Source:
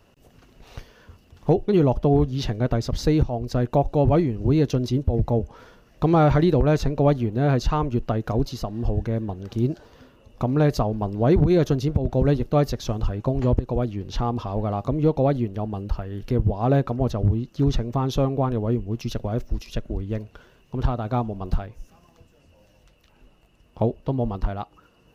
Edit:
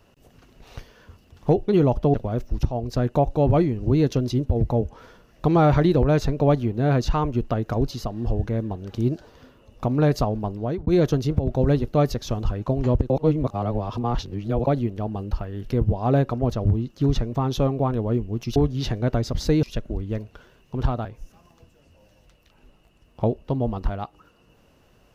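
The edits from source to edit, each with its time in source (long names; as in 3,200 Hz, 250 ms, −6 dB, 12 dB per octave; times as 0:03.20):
0:02.14–0:03.21: swap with 0:19.14–0:19.63
0:10.80–0:11.45: fade out equal-power
0:13.68–0:15.25: reverse
0:21.05–0:21.63: remove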